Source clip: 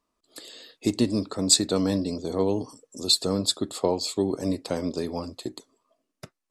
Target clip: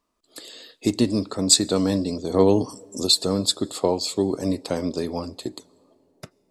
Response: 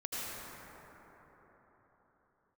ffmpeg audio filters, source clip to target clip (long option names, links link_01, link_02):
-filter_complex "[0:a]asettb=1/sr,asplit=3[link_01][link_02][link_03];[link_01]atrim=end=2.344[link_04];[link_02]atrim=start=2.34:end=3.07,asetpts=PTS-STARTPTS,afade=type=in:duration=0.004:curve=qsin,afade=type=out:start_time=0.726:duration=0.004:curve=qsin,acontrast=27[link_05];[link_03]atrim=start=3.066[link_06];[link_04][link_05]acrossfade=duration=0.004:curve1=hsin:curve2=qsin[link_07];[link_07][link_06]acrossfade=duration=0.004:curve1=qsin:curve2=hsin,asplit=2[link_08][link_09];[link_09]equalizer=frequency=1400:width=1.3:gain=-14.5[link_10];[1:a]atrim=start_sample=2205,lowshelf=frequency=390:gain=-9.5[link_11];[link_10][link_11]afir=irnorm=-1:irlink=0,volume=-25.5dB[link_12];[link_08][link_12]amix=inputs=2:normalize=0,volume=2.5dB"